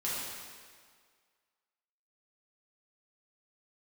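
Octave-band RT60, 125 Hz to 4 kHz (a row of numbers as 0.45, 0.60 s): 1.5, 1.7, 1.8, 1.8, 1.7, 1.6 s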